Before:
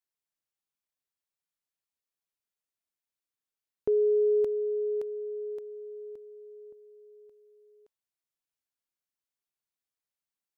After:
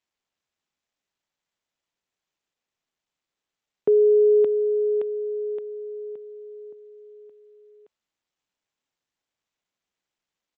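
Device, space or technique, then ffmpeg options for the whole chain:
Bluetooth headset: -af "highpass=f=140:w=0.5412,highpass=f=140:w=1.3066,aresample=8000,aresample=44100,volume=2.37" -ar 16000 -c:a sbc -b:a 64k

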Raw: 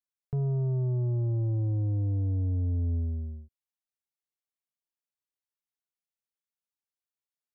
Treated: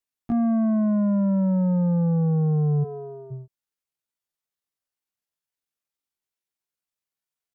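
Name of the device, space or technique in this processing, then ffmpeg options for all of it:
chipmunk voice: -filter_complex "[0:a]asetrate=74167,aresample=44100,atempo=0.594604,asplit=3[s0][s1][s2];[s0]afade=t=out:st=2.83:d=0.02[s3];[s1]highpass=f=260:w=0.5412,highpass=f=260:w=1.3066,afade=t=in:st=2.83:d=0.02,afade=t=out:st=3.3:d=0.02[s4];[s2]afade=t=in:st=3.3:d=0.02[s5];[s3][s4][s5]amix=inputs=3:normalize=0,volume=2.11"

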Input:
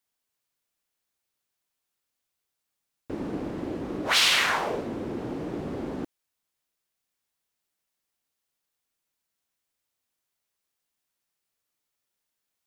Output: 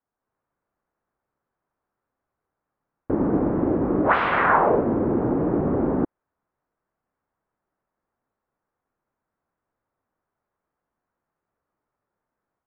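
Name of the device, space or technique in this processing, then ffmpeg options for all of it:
action camera in a waterproof case: -af "lowpass=f=1400:w=0.5412,lowpass=f=1400:w=1.3066,dynaudnorm=f=140:g=3:m=2.24,volume=1.58" -ar 24000 -c:a aac -b:a 48k

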